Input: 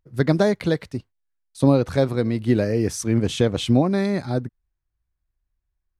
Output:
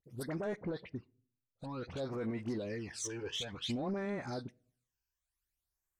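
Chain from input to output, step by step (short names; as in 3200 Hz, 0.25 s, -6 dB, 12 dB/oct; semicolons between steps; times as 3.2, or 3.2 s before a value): treble ducked by the level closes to 2900 Hz, closed at -17.5 dBFS; tilt +3.5 dB/oct; 0.52–1.92 low-pass opened by the level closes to 420 Hz, open at -17 dBFS; in parallel at -0.5 dB: compressor, threshold -32 dBFS, peak gain reduction 15 dB; on the sum: limiter -19 dBFS, peak gain reduction 13 dB; phaser stages 12, 0.55 Hz, lowest notch 200–4500 Hz; dispersion highs, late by 43 ms, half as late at 1100 Hz; soft clip -20 dBFS, distortion -22 dB; on a send at -21.5 dB: reverb RT60 0.50 s, pre-delay 4 ms; on the sum: gain -8 dB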